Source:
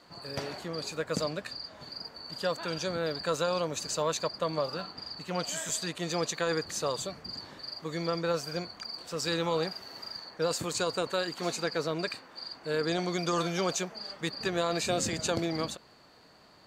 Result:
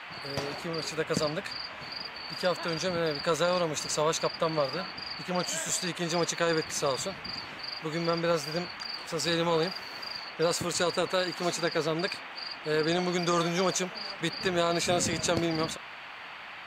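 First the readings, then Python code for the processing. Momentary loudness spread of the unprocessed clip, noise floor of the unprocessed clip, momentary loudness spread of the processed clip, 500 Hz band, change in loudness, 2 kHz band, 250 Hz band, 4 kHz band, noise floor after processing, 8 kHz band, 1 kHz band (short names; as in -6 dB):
10 LU, -58 dBFS, 10 LU, +2.5 dB, +2.5 dB, +4.5 dB, +2.5 dB, +2.5 dB, -43 dBFS, +2.5 dB, +3.0 dB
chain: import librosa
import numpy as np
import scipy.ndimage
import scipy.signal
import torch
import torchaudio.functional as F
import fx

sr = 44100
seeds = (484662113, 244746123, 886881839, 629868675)

y = fx.dmg_noise_band(x, sr, seeds[0], low_hz=660.0, high_hz=2900.0, level_db=-46.0)
y = fx.cheby_harmonics(y, sr, harmonics=(3,), levels_db=(-24,), full_scale_db=-14.5)
y = y * librosa.db_to_amplitude(4.0)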